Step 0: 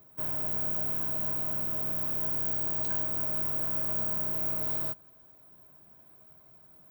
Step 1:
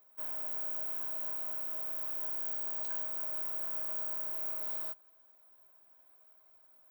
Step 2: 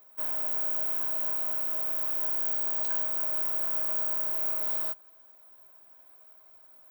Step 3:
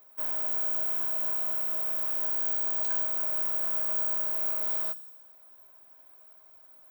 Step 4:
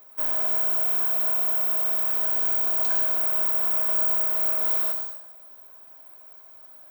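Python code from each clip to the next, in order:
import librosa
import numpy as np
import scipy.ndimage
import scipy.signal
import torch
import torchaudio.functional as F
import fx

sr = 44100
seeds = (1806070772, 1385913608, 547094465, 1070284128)

y1 = scipy.signal.sosfilt(scipy.signal.butter(2, 590.0, 'highpass', fs=sr, output='sos'), x)
y1 = F.gain(torch.from_numpy(y1), -6.0).numpy()
y2 = fx.quant_float(y1, sr, bits=4)
y2 = F.gain(torch.from_numpy(y2), 7.5).numpy()
y3 = fx.echo_wet_highpass(y2, sr, ms=63, feedback_pct=68, hz=3900.0, wet_db=-13.5)
y4 = fx.rev_plate(y3, sr, seeds[0], rt60_s=0.92, hf_ratio=0.8, predelay_ms=80, drr_db=6.0)
y4 = F.gain(torch.from_numpy(y4), 6.0).numpy()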